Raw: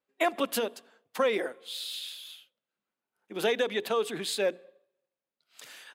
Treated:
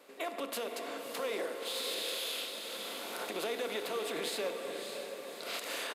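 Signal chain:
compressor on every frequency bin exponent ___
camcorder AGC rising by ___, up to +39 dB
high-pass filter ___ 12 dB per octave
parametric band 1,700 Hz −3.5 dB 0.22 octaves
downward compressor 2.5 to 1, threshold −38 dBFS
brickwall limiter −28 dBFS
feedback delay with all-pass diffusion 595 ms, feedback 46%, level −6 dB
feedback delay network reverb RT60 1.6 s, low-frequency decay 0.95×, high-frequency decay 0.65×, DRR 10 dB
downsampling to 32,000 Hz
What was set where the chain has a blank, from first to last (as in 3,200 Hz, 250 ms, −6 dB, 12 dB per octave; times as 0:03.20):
0.6, 15 dB per second, 230 Hz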